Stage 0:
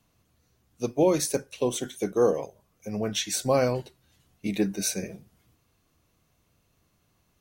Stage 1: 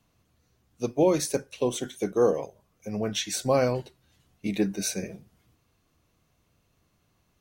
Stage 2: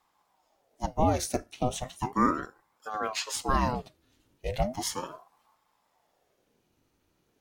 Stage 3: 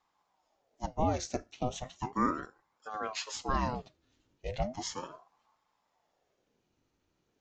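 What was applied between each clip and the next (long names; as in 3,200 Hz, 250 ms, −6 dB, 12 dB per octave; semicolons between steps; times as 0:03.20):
parametric band 14,000 Hz −4 dB 1.4 octaves
ring modulator whose carrier an LFO sweeps 580 Hz, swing 70%, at 0.36 Hz
downsampling to 16,000 Hz; level −5 dB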